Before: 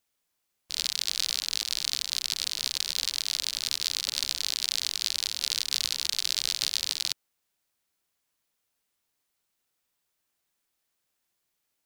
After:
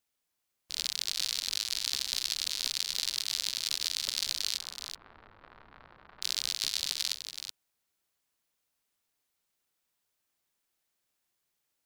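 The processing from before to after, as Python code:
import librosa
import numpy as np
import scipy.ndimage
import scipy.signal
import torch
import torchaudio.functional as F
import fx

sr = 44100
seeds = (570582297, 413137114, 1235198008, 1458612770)

y = fx.lowpass(x, sr, hz=1300.0, slope=24, at=(4.58, 6.22))
y = fx.rider(y, sr, range_db=10, speed_s=0.5)
y = y + 10.0 ** (-8.0 / 20.0) * np.pad(y, (int(376 * sr / 1000.0), 0))[:len(y)]
y = y * 10.0 ** (-3.0 / 20.0)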